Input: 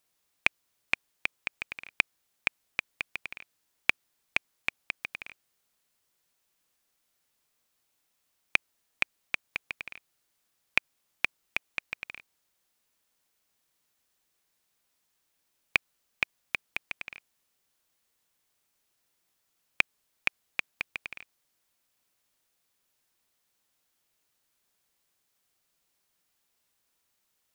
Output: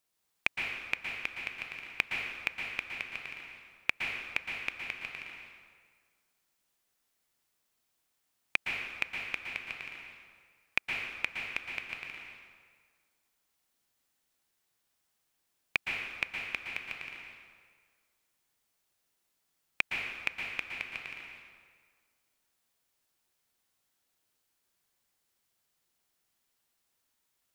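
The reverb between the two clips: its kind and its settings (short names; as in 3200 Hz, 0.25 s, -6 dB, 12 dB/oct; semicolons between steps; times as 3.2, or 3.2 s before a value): plate-style reverb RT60 1.7 s, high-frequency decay 0.75×, pre-delay 0.105 s, DRR 0 dB; gain -5 dB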